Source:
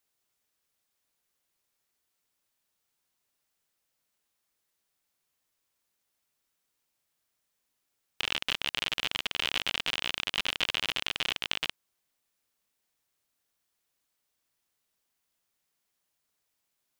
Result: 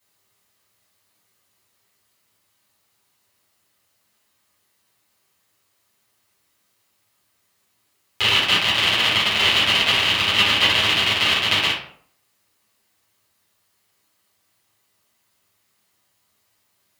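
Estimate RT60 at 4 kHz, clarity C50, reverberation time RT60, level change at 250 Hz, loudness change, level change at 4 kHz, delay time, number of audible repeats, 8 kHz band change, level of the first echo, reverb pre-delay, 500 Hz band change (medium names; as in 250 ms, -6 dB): 0.35 s, 4.5 dB, 0.60 s, +15.0 dB, +14.0 dB, +14.0 dB, no echo, no echo, +12.0 dB, no echo, 6 ms, +14.5 dB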